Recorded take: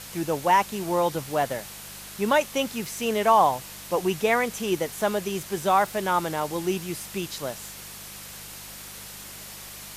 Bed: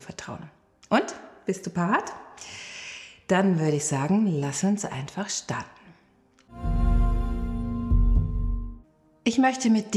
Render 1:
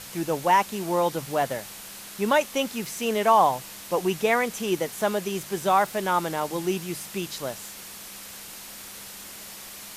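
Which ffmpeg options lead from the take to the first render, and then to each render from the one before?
ffmpeg -i in.wav -af "bandreject=frequency=50:width_type=h:width=4,bandreject=frequency=100:width_type=h:width=4,bandreject=frequency=150:width_type=h:width=4" out.wav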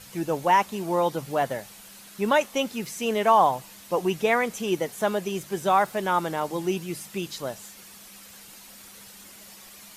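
ffmpeg -i in.wav -af "afftdn=noise_reduction=8:noise_floor=-42" out.wav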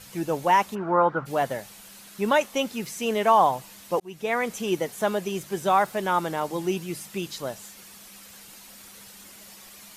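ffmpeg -i in.wav -filter_complex "[0:a]asplit=3[link_01][link_02][link_03];[link_01]afade=type=out:start_time=0.74:duration=0.02[link_04];[link_02]lowpass=frequency=1400:width_type=q:width=6.5,afade=type=in:start_time=0.74:duration=0.02,afade=type=out:start_time=1.25:duration=0.02[link_05];[link_03]afade=type=in:start_time=1.25:duration=0.02[link_06];[link_04][link_05][link_06]amix=inputs=3:normalize=0,asplit=2[link_07][link_08];[link_07]atrim=end=4,asetpts=PTS-STARTPTS,afade=type=out:start_time=3.996:duration=0.004:curve=hsin[link_09];[link_08]atrim=start=4,asetpts=PTS-STARTPTS,afade=type=in:duration=0.5[link_10];[link_09][link_10]concat=n=2:v=0:a=1" out.wav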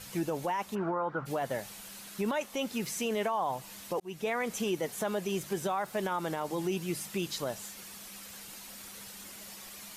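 ffmpeg -i in.wav -af "acompressor=threshold=-29dB:ratio=2,alimiter=limit=-23dB:level=0:latency=1:release=25" out.wav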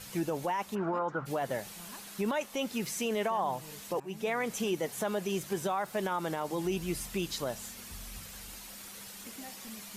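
ffmpeg -i in.wav -i bed.wav -filter_complex "[1:a]volume=-27.5dB[link_01];[0:a][link_01]amix=inputs=2:normalize=0" out.wav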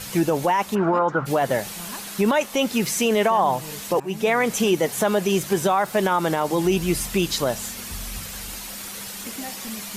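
ffmpeg -i in.wav -af "volume=12dB" out.wav

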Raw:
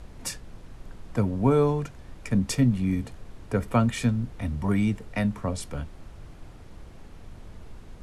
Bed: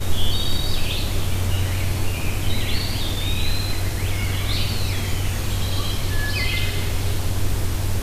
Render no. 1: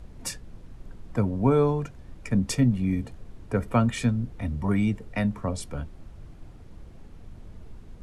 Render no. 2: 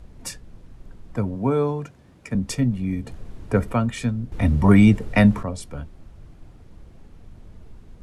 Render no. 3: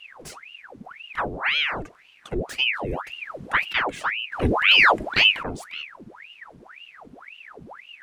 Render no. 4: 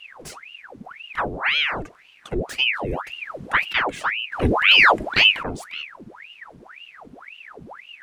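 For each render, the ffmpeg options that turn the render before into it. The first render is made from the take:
ffmpeg -i in.wav -af "afftdn=noise_reduction=6:noise_floor=-47" out.wav
ffmpeg -i in.wav -filter_complex "[0:a]asettb=1/sr,asplit=3[link_01][link_02][link_03];[link_01]atrim=end=1.354[link_04];[link_02]atrim=start=1.35:end=2.35,asetpts=PTS-STARTPTS,afade=type=in:duration=0.004:curve=qsin,afade=type=out:start_time=0.996:duration=0.004:curve=qsin,highpass=110[link_05];[link_03]atrim=start=2.346[link_06];[link_04][link_05]acrossfade=duration=0.004:curve1=hsin:curve2=qsin[link_07];[link_07][link_06]acrossfade=duration=0.004:curve1=qsin:curve2=hsin,asplit=5[link_08][link_09][link_10][link_11][link_12];[link_08]atrim=end=3.072[link_13];[link_09]atrim=start=3.068:end=3.732,asetpts=PTS-STARTPTS,volume=6dB[link_14];[link_10]atrim=start=3.728:end=4.322[link_15];[link_11]atrim=start=4.318:end=5.432,asetpts=PTS-STARTPTS,volume=11dB[link_16];[link_12]atrim=start=5.428[link_17];[link_13][link_14]acrossfade=duration=0.004:curve1=hsin:curve2=hsin[link_18];[link_18][link_15]acrossfade=duration=0.004:curve1=hsin:curve2=hsin[link_19];[link_19][link_16]acrossfade=duration=0.004:curve1=hsin:curve2=hsin[link_20];[link_20][link_17]acrossfade=duration=0.004:curve1=hsin:curve2=hsin" out.wav
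ffmpeg -i in.wav -filter_complex "[0:a]acrossover=split=130|3100[link_01][link_02][link_03];[link_03]asoftclip=type=tanh:threshold=-35.5dB[link_04];[link_01][link_02][link_04]amix=inputs=3:normalize=0,aeval=exprs='val(0)*sin(2*PI*1500*n/s+1500*0.9/1.9*sin(2*PI*1.9*n/s))':channel_layout=same" out.wav
ffmpeg -i in.wav -af "volume=2dB" out.wav

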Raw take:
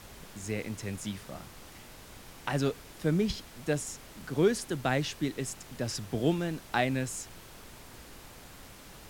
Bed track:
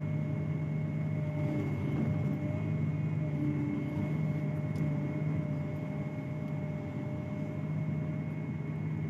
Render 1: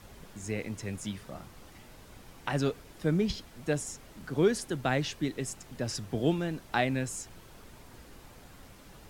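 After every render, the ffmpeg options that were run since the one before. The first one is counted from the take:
ffmpeg -i in.wav -af "afftdn=noise_reduction=6:noise_floor=-51" out.wav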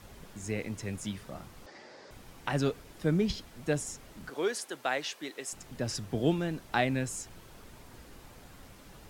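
ffmpeg -i in.wav -filter_complex "[0:a]asettb=1/sr,asplit=3[link_01][link_02][link_03];[link_01]atrim=end=1.664[link_04];[link_02]atrim=start=1.66:end=2.11,asetpts=PTS-STARTPTS,afade=type=in:duration=0.004:curve=qsin,afade=type=out:start_time=0.446:duration=0.004:curve=qsin,highpass=260,equalizer=frequency=380:width_type=q:width=4:gain=6,equalizer=frequency=550:width_type=q:width=4:gain=9,equalizer=frequency=830:width_type=q:width=4:gain=4,equalizer=frequency=1800:width_type=q:width=4:gain=9,equalizer=frequency=2900:width_type=q:width=4:gain=-5,equalizer=frequency=4800:width_type=q:width=4:gain=8,lowpass=frequency=6500:width=0.5412,lowpass=frequency=6500:width=1.3066[link_05];[link_03]atrim=start=2.106[link_06];[link_04][link_05]acrossfade=duration=0.004:curve1=hsin:curve2=qsin[link_07];[link_07][link_06]acrossfade=duration=0.004:curve1=qsin:curve2=hsin,asettb=1/sr,asplit=3[link_08][link_09][link_10];[link_08]atrim=end=4.304[link_11];[link_09]atrim=start=4.3:end=5.53,asetpts=PTS-STARTPTS,afade=type=in:duration=0.004:curve=qsin,afade=type=out:start_time=1.226:duration=0.004:curve=qsin,highpass=520[link_12];[link_10]atrim=start=5.526[link_13];[link_11][link_12]acrossfade=duration=0.004:curve1=hsin:curve2=qsin[link_14];[link_14][link_13]acrossfade=duration=0.004:curve1=qsin:curve2=hsin" out.wav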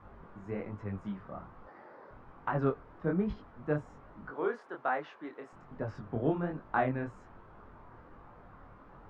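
ffmpeg -i in.wav -af "flanger=delay=19:depth=7.4:speed=1.2,lowpass=frequency=1200:width_type=q:width=2.3" out.wav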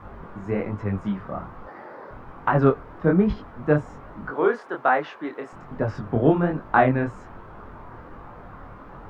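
ffmpeg -i in.wav -af "volume=12dB" out.wav

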